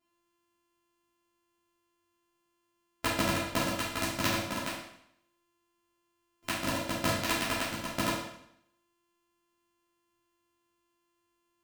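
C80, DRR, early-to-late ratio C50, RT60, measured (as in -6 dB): 5.5 dB, -10.0 dB, 1.5 dB, 0.75 s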